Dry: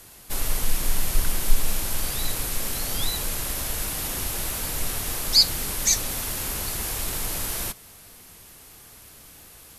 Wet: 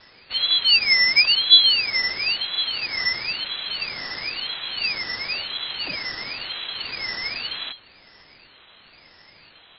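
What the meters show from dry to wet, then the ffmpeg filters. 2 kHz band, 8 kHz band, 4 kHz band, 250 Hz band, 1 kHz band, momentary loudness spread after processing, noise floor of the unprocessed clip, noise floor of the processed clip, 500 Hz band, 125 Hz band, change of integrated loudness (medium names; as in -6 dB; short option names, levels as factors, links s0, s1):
+13.0 dB, under -40 dB, +9.5 dB, -8.0 dB, -1.5 dB, 15 LU, -48 dBFS, -52 dBFS, -5.0 dB, -15.0 dB, +5.5 dB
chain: -filter_complex "[0:a]acrossover=split=2700[s0][s1];[s1]acompressor=threshold=0.00794:ratio=4:attack=1:release=60[s2];[s0][s2]amix=inputs=2:normalize=0,crystalizer=i=2.5:c=0,lowpass=f=3100:t=q:w=0.5098,lowpass=f=3100:t=q:w=0.6013,lowpass=f=3100:t=q:w=0.9,lowpass=f=3100:t=q:w=2.563,afreqshift=-3700,aeval=exprs='val(0)*sin(2*PI*1000*n/s+1000*0.7/0.98*sin(2*PI*0.98*n/s))':c=same,volume=1.58"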